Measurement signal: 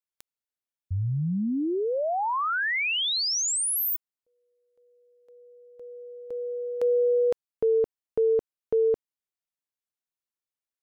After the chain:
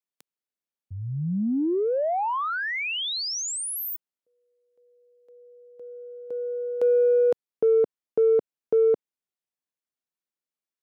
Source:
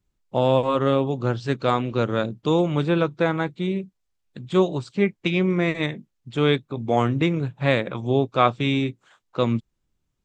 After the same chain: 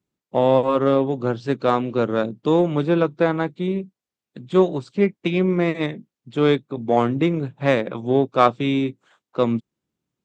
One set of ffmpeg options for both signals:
-filter_complex "[0:a]highpass=180,highshelf=f=5.2k:g=-4,asplit=2[a][b];[b]adynamicsmooth=sensitivity=0.5:basefreq=740,volume=-2.5dB[c];[a][c]amix=inputs=2:normalize=0,volume=-1dB"

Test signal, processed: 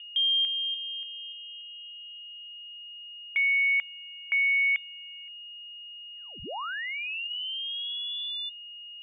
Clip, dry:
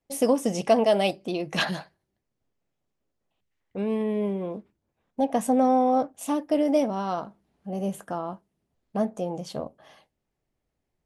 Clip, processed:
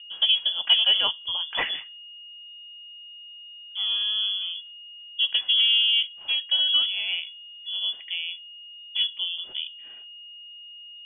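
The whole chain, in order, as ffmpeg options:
-af "aeval=exprs='val(0)+0.00891*sin(2*PI*740*n/s)':c=same,lowpass=f=3.1k:t=q:w=0.5098,lowpass=f=3.1k:t=q:w=0.6013,lowpass=f=3.1k:t=q:w=0.9,lowpass=f=3.1k:t=q:w=2.563,afreqshift=-3600"

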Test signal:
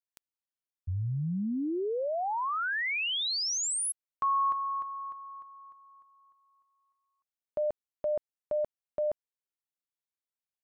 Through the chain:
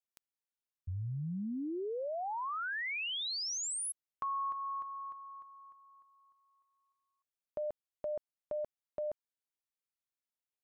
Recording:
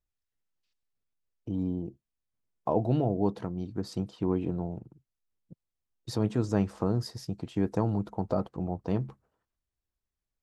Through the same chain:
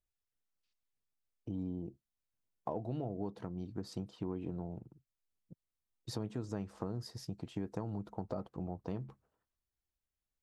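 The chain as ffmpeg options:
-af "acompressor=threshold=-29dB:ratio=5:attack=7.7:release=478:knee=6:detection=peak,volume=-4.5dB"

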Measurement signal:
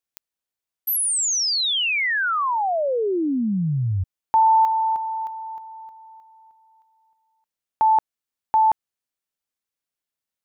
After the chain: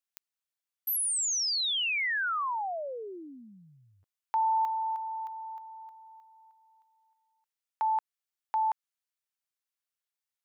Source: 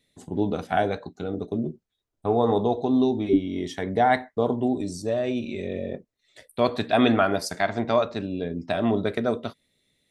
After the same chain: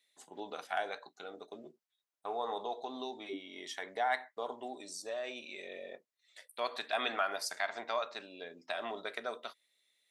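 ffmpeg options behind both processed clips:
-filter_complex "[0:a]highpass=890,asplit=2[a][b];[b]acompressor=threshold=-34dB:ratio=10:attack=12:release=74:detection=rms,volume=-2dB[c];[a][c]amix=inputs=2:normalize=0,asoftclip=type=hard:threshold=-11.5dB,volume=-9dB"

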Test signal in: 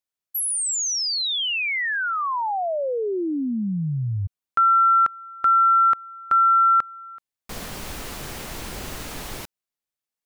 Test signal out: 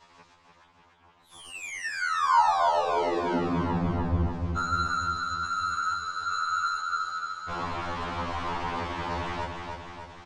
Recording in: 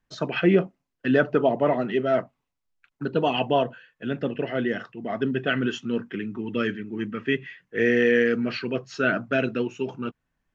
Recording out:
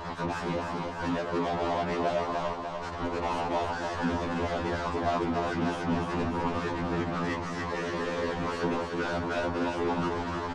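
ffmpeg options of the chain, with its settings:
-filter_complex "[0:a]aeval=exprs='val(0)+0.5*0.0596*sgn(val(0))':c=same,alimiter=limit=-17.5dB:level=0:latency=1:release=330,asplit=2[a][b];[b]highpass=f=720:p=1,volume=29dB,asoftclip=type=tanh:threshold=-17.5dB[c];[a][c]amix=inputs=2:normalize=0,lowpass=f=1.1k:p=1,volume=-6dB,aresample=8000,aresample=44100,aeval=exprs='0.141*(cos(1*acos(clip(val(0)/0.141,-1,1)))-cos(1*PI/2))+0.00562*(cos(2*acos(clip(val(0)/0.141,-1,1)))-cos(2*PI/2))+0.0126*(cos(3*acos(clip(val(0)/0.141,-1,1)))-cos(3*PI/2))+0.02*(cos(7*acos(clip(val(0)/0.141,-1,1)))-cos(7*PI/2))+0.00112*(cos(8*acos(clip(val(0)/0.141,-1,1)))-cos(8*PI/2))':c=same,equalizer=f=980:t=o:w=0.53:g=10.5,afftfilt=real='hypot(re,im)*cos(2*PI*random(0))':imag='hypot(re,im)*sin(2*PI*random(1))':win_size=512:overlap=0.75,lowshelf=f=120:g=7,asplit=2[d][e];[e]aecho=0:1:297|594|891|1188|1485|1782|2079|2376:0.562|0.326|0.189|0.11|0.0636|0.0369|0.0214|0.0124[f];[d][f]amix=inputs=2:normalize=0,afftfilt=real='re*2*eq(mod(b,4),0)':imag='im*2*eq(mod(b,4),0)':win_size=2048:overlap=0.75"

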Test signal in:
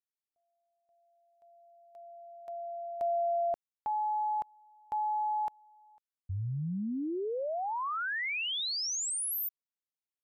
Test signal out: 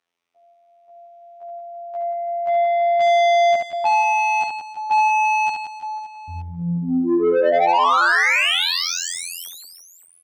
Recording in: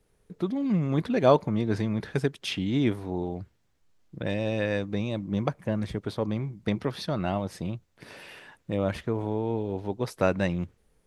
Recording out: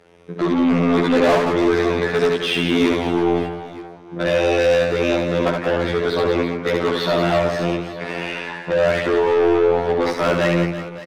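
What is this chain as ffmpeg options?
-filter_complex "[0:a]afftfilt=real='hypot(re,im)*cos(PI*b)':imag='0':win_size=2048:overlap=0.75,acrossover=split=320[a][b];[a]acompressor=threshold=-58dB:ratio=1.5:attack=13:release=26:knee=2.83:detection=peak[c];[c][b]amix=inputs=2:normalize=0,aemphasis=mode=reproduction:type=75fm,asplit=2[d][e];[e]highpass=f=720:p=1,volume=35dB,asoftclip=type=tanh:threshold=-9dB[f];[d][f]amix=inputs=2:normalize=0,lowpass=f=3.6k:p=1,volume=-6dB,aecho=1:1:70|175|332.5|568.8|923.1:0.631|0.398|0.251|0.158|0.1,volume=-1dB"

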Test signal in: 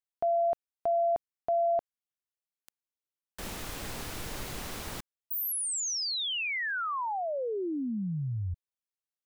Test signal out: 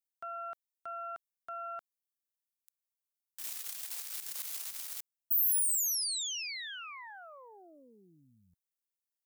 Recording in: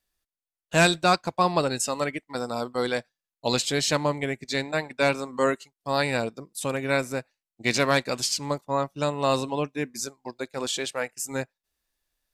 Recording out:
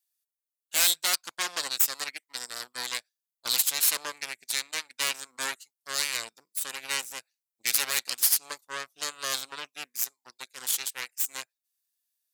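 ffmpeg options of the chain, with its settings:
-af "aeval=exprs='0.422*(cos(1*acos(clip(val(0)/0.422,-1,1)))-cos(1*PI/2))+0.0335*(cos(3*acos(clip(val(0)/0.422,-1,1)))-cos(3*PI/2))+0.133*(cos(4*acos(clip(val(0)/0.422,-1,1)))-cos(4*PI/2))+0.015*(cos(5*acos(clip(val(0)/0.422,-1,1)))-cos(5*PI/2))+0.119*(cos(8*acos(clip(val(0)/0.422,-1,1)))-cos(8*PI/2))':c=same,aderivative"

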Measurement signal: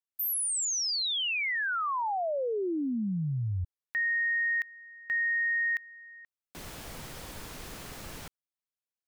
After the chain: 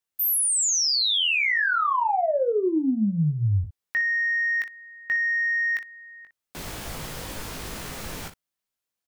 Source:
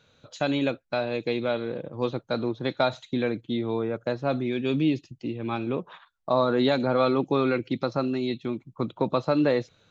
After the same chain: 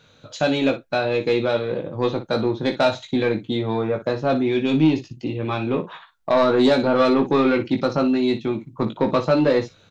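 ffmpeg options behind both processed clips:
-filter_complex "[0:a]asoftclip=type=tanh:threshold=-17.5dB,asplit=2[a][b];[b]aecho=0:1:19|59:0.531|0.251[c];[a][c]amix=inputs=2:normalize=0,volume=6.5dB"

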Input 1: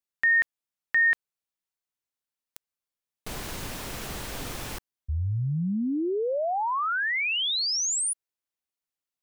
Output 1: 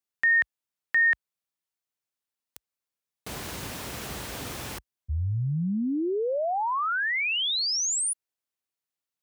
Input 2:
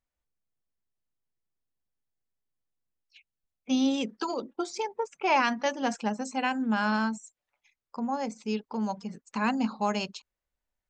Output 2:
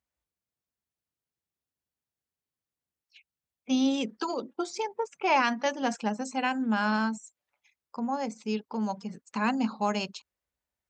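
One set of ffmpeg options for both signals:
-af "highpass=f=52:w=0.5412,highpass=f=52:w=1.3066"

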